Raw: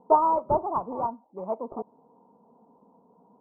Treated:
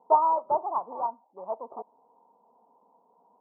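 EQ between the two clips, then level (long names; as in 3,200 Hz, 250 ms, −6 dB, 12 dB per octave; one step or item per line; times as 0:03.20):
resonant band-pass 870 Hz, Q 1.5
0.0 dB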